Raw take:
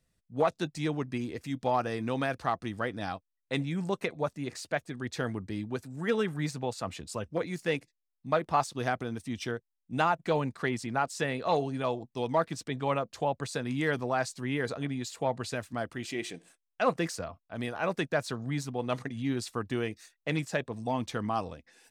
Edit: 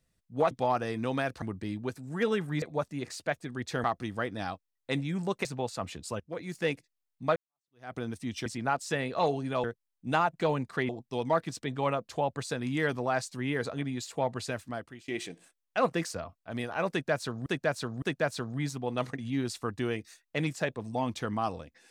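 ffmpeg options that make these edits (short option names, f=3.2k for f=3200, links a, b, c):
-filter_complex "[0:a]asplit=14[a][b][c][d][e][f][g][h][i][j][k][l][m][n];[a]atrim=end=0.512[o];[b]atrim=start=1.548:end=2.462[p];[c]atrim=start=5.288:end=6.492[q];[d]atrim=start=4.068:end=5.292[r];[e]atrim=start=2.458:end=4.072[s];[f]atrim=start=6.488:end=7.24,asetpts=PTS-STARTPTS,afade=t=out:st=0.748:d=0.004:c=hsin:silence=0.16788[t];[g]atrim=start=7.24:end=8.4,asetpts=PTS-STARTPTS,afade=t=in:d=0.41:silence=0.16788,afade=t=out:st=1.156:d=0.004:c=hsin[u];[h]atrim=start=8.4:end=9.502,asetpts=PTS-STARTPTS,afade=t=in:d=0.59:c=exp[v];[i]atrim=start=10.748:end=11.932[w];[j]atrim=start=9.498:end=10.752[x];[k]atrim=start=11.928:end=16.12,asetpts=PTS-STARTPTS,afade=t=out:st=3.692:d=0.5:silence=0.0841395[y];[l]atrim=start=16.12:end=18.502,asetpts=PTS-STARTPTS,afade=t=in:d=0.004:c=hsin:silence=0.0841395[z];[m]atrim=start=17.938:end=18.502[aa];[n]atrim=start=17.938[ab];[o][p]acrossfade=d=0.004:c1=hsin:c2=hsin[ac];[ac][q]acrossfade=d=0.004:c1=hsin:c2=hsin[ad];[ad][r]acrossfade=d=0.004:c1=hsin:c2=hsin[ae];[ae][s]acrossfade=d=0.004:c1=hsin:c2=hsin[af];[t][u][v]concat=n=3:v=0:a=1[ag];[af][ag]acrossfade=d=0.004:c1=hsin:c2=hsin[ah];[ah][w]acrossfade=d=0.004:c1=hsin:c2=hsin[ai];[ai][x]acrossfade=d=0.004:c1=hsin:c2=hsin[aj];[y][z]concat=n=2:v=0:a=1[ak];[aj][ak]acrossfade=d=0.004:c1=hsin:c2=hsin[al];[al][aa]acrossfade=d=0.004:c1=hsin:c2=hsin[am];[am][ab]acrossfade=d=0.004:c1=hsin:c2=hsin"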